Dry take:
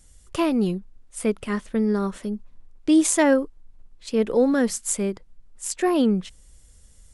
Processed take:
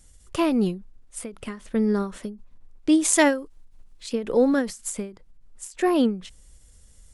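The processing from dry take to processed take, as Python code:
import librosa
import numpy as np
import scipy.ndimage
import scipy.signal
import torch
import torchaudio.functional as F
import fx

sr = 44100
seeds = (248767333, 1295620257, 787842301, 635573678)

y = fx.high_shelf(x, sr, hz=2100.0, db=8.5, at=(3.13, 4.13))
y = fx.end_taper(y, sr, db_per_s=140.0)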